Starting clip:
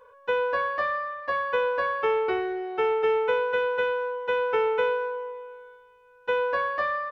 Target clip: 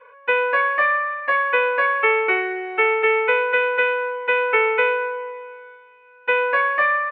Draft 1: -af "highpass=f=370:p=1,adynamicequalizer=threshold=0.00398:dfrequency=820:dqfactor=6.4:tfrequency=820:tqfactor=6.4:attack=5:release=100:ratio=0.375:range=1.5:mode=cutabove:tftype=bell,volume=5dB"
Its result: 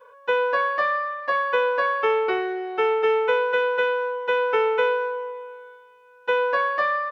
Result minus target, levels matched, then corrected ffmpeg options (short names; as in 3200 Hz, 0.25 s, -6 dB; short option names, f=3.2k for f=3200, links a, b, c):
2000 Hz band -3.5 dB
-af "highpass=f=370:p=1,adynamicequalizer=threshold=0.00398:dfrequency=820:dqfactor=6.4:tfrequency=820:tqfactor=6.4:attack=5:release=100:ratio=0.375:range=1.5:mode=cutabove:tftype=bell,lowpass=f=2.3k:t=q:w=4.7,volume=5dB"